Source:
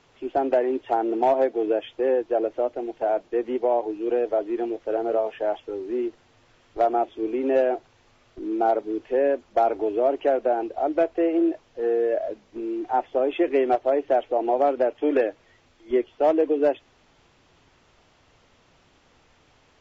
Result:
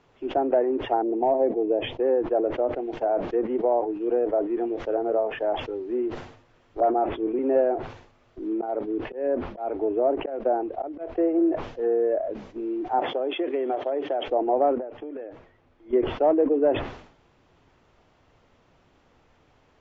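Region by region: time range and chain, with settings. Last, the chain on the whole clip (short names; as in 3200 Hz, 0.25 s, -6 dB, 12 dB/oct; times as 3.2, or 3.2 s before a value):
1.02–2 LPF 3000 Hz 6 dB/oct + bell 1400 Hz -12.5 dB 0.64 oct + mismatched tape noise reduction decoder only
6.8–7.39 LPF 3300 Hz + dispersion highs, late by 45 ms, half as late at 1500 Hz
8.53–11.39 auto swell 0.211 s + air absorption 160 m
12.99–14.28 compressor, threshold -21 dBFS + HPF 230 Hz + bell 3300 Hz +8.5 dB 0.22 oct
14.78–15.93 LPF 2000 Hz 6 dB/oct + compressor 5:1, threshold -34 dBFS
whole clip: treble ducked by the level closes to 1700 Hz, closed at -20.5 dBFS; high shelf 2300 Hz -10.5 dB; sustainer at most 90 dB/s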